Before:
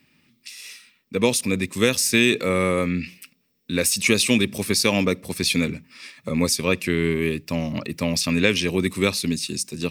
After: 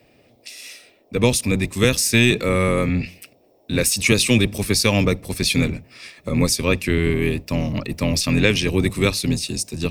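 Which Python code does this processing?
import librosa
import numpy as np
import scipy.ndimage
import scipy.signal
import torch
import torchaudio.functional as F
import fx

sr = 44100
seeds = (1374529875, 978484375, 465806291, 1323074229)

y = fx.octave_divider(x, sr, octaves=1, level_db=-1.0)
y = fx.dmg_noise_band(y, sr, seeds[0], low_hz=250.0, high_hz=710.0, level_db=-60.0)
y = y * librosa.db_to_amplitude(1.5)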